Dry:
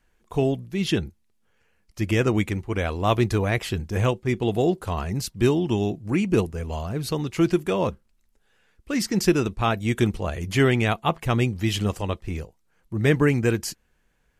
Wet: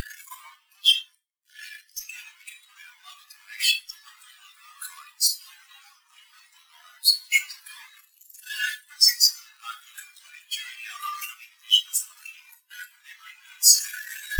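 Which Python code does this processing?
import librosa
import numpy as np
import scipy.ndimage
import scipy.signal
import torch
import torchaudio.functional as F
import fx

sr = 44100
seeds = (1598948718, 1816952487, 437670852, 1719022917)

p1 = np.sign(x) * np.sqrt(np.mean(np.square(x)))
p2 = scipy.signal.sosfilt(scipy.signal.bessel(6, 1300.0, 'highpass', norm='mag', fs=sr, output='sos'), p1)
p3 = fx.tilt_eq(p2, sr, slope=3.5)
p4 = fx.clip_asym(p3, sr, top_db=-15.5, bottom_db=-10.5)
p5 = p4 + fx.echo_swing(p4, sr, ms=1028, ratio=1.5, feedback_pct=79, wet_db=-16.5, dry=0)
p6 = fx.rev_schroeder(p5, sr, rt60_s=0.92, comb_ms=26, drr_db=2.5)
p7 = fx.spectral_expand(p6, sr, expansion=4.0)
y = p7 * 10.0 ** (3.5 / 20.0)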